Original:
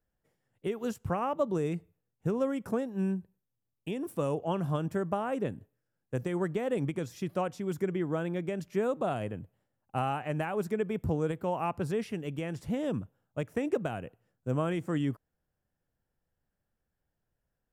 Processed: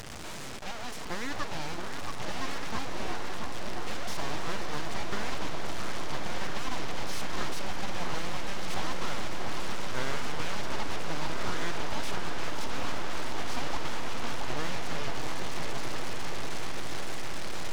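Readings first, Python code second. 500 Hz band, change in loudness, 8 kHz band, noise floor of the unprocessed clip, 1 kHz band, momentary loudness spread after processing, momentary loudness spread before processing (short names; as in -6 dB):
-7.0 dB, -3.0 dB, +13.0 dB, -84 dBFS, +1.5 dB, 4 LU, 8 LU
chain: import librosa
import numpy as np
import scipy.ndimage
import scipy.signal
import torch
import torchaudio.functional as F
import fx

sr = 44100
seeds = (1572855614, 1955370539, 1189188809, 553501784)

y = fx.delta_mod(x, sr, bps=32000, step_db=-29.0)
y = scipy.signal.sosfilt(scipy.signal.butter(4, 62.0, 'highpass', fs=sr, output='sos'), y)
y = fx.low_shelf(y, sr, hz=360.0, db=-9.0)
y = fx.echo_opening(y, sr, ms=675, hz=750, octaves=1, feedback_pct=70, wet_db=-3)
y = np.abs(y)
y = fx.echo_swell(y, sr, ms=153, loudest=8, wet_db=-16.5)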